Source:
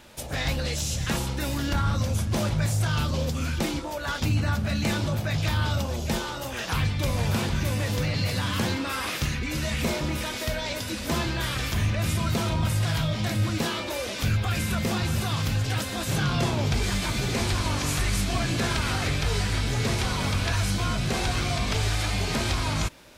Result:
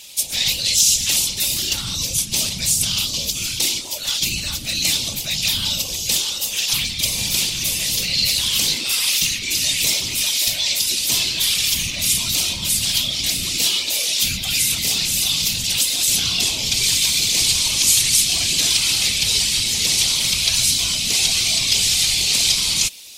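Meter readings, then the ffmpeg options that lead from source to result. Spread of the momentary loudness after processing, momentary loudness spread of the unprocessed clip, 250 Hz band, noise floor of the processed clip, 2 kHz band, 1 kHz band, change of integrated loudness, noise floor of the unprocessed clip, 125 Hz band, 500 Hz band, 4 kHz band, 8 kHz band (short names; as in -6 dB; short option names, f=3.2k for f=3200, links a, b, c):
5 LU, 3 LU, -6.5 dB, -28 dBFS, +4.5 dB, -8.5 dB, +10.0 dB, -33 dBFS, -9.5 dB, -8.0 dB, +15.5 dB, +18.5 dB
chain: -af "aexciter=amount=15.6:drive=4.4:freq=2.4k,afftfilt=real='hypot(re,im)*cos(2*PI*random(0))':imag='hypot(re,im)*sin(2*PI*random(1))':win_size=512:overlap=0.75,volume=-2dB"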